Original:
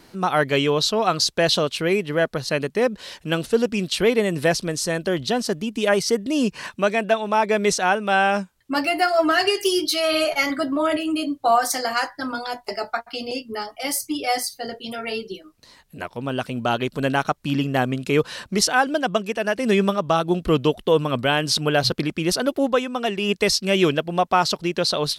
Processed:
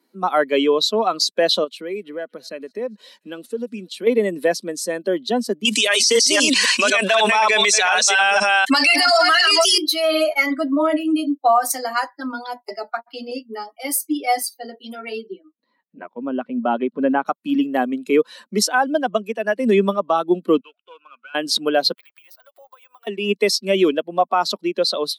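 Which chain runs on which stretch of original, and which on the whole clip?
1.64–4.07 compressor 2:1, threshold -29 dBFS + thinning echo 0.231 s, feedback 56%, high-pass 840 Hz, level -18 dB
5.65–9.78 reverse delay 0.25 s, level -1.5 dB + weighting filter ITU-R 468 + fast leveller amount 70%
15.27–17.26 LPF 2500 Hz + low shelf 240 Hz +5 dB
20.6–21.35 switching dead time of 0.089 ms + double band-pass 1900 Hz, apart 0.78 oct + compressor, threshold -31 dBFS
21.93–23.07 HPF 730 Hz 24 dB/oct + compressor 20:1, threshold -37 dBFS + careless resampling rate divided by 2×, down none, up hold
whole clip: per-bin expansion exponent 1.5; steep high-pass 210 Hz 48 dB/oct; limiter -14 dBFS; gain +7 dB

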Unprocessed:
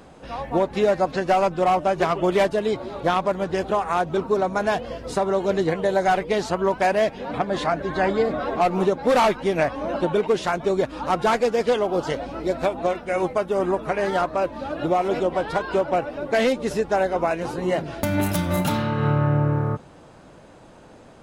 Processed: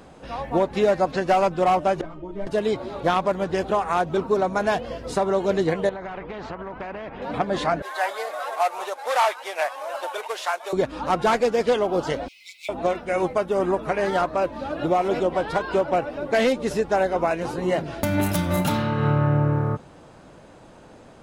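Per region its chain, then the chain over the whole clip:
2.01–2.47 tilt -4.5 dB/oct + resonator 310 Hz, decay 0.41 s, mix 90% + ensemble effect
5.89–7.22 Chebyshev low-pass 950 Hz + compressor, threshold -26 dBFS + spectral compressor 2:1
7.82–10.73 CVSD 64 kbps + HPF 640 Hz 24 dB/oct
12.28–12.69 brick-wall FIR high-pass 2000 Hz + companded quantiser 6-bit
whole clip: dry

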